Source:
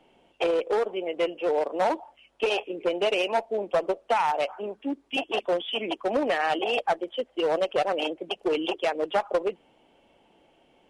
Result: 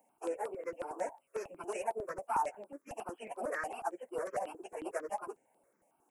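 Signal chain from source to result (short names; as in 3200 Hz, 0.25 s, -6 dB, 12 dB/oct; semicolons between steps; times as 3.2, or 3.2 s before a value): HPF 71 Hz 24 dB/oct; tilt +4 dB/oct; plain phase-vocoder stretch 0.56×; Butterworth band-stop 3600 Hz, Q 0.57; step phaser 11 Hz 370–6400 Hz; gain -2 dB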